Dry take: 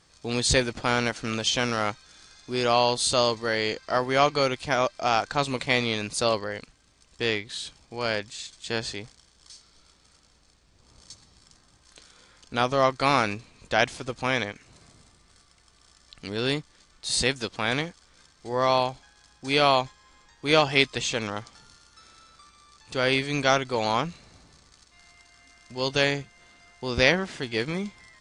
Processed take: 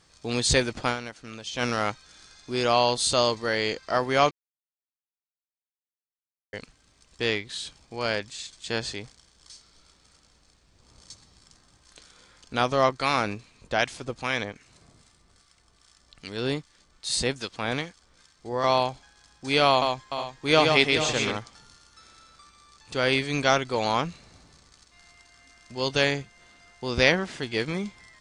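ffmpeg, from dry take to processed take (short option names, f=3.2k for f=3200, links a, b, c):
-filter_complex "[0:a]asettb=1/sr,asplit=3[a][b][c];[a]atrim=end=12.894[d];[b]atrim=start=12.89:end=18.64,asetpts=PTS-STARTPTS,afade=t=in:d=0.004:c=qsin,afade=t=out:st=5.746:d=0.004:c=qsin,acrossover=split=1100[e][f];[e]aeval=exprs='val(0)*(1-0.5/2+0.5/2*cos(2*PI*2.5*n/s))':c=same[g];[f]aeval=exprs='val(0)*(1-0.5/2-0.5/2*cos(2*PI*2.5*n/s))':c=same[h];[g][h]amix=inputs=2:normalize=0[i];[c]atrim=start=18.636[j];[d][i]acrossfade=d=0.004:c1=hsin:c2=qsin[k];[k][j]acrossfade=d=0.004:c1=qsin:c2=hsin,asettb=1/sr,asplit=3[l][m][n];[l]atrim=end=19.694[o];[m]atrim=start=19.69:end=21.37,asetpts=PTS-STARTPTS,afade=t=in:d=0.004:c=qsin,afade=t=out:st=1.676:d=0.004:c=qsin,aecho=1:1:127|425|489:0.631|0.299|0.2,atrim=end_sample=74088[p];[n]atrim=start=21.366[q];[o][p]acrossfade=d=0.004:c1=hsin:c2=qsin[r];[r][q]acrossfade=d=0.004:c1=qsin:c2=hsin,asplit=5[s][t][u][v][w];[s]atrim=end=1.01,asetpts=PTS-STARTPTS,afade=t=out:st=0.88:d=0.13:c=qua:silence=0.266073[x];[t]atrim=start=1.01:end=1.5,asetpts=PTS-STARTPTS,volume=-11.5dB[y];[u]atrim=start=1.5:end=4.31,asetpts=PTS-STARTPTS,afade=t=in:d=0.13:c=qua:silence=0.266073,afade=t=out:st=2.806:d=0.004:c=hsin[z];[v]atrim=start=4.31:end=6.53,asetpts=PTS-STARTPTS,volume=0[aa];[w]atrim=start=6.53,asetpts=PTS-STARTPTS,afade=t=in:d=0.004:c=hsin[ab];[x][y][z][aa][ab]concat=n=5:v=0:a=1"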